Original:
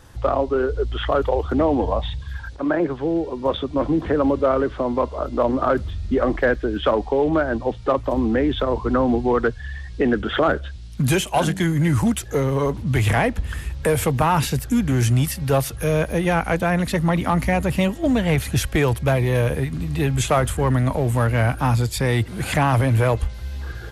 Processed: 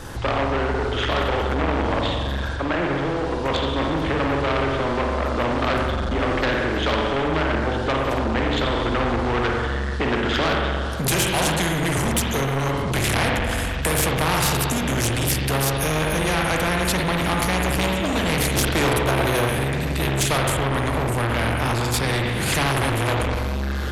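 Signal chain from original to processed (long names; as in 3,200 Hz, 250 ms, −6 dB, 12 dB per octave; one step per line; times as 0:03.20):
low-shelf EQ 260 Hz +9.5 dB
mains-hum notches 50/100/150/200/250 Hz
spring reverb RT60 1.2 s, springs 44/58 ms, chirp 50 ms, DRR 0.5 dB
soft clipping −11 dBFS, distortion −11 dB
0:18.56–0:19.47: gain on a spectral selection 220–1,600 Hz +6 dB
0:20.38–0:22.54: high-shelf EQ 5,100 Hz −5.5 dB
every bin compressed towards the loudest bin 2 to 1
level −1.5 dB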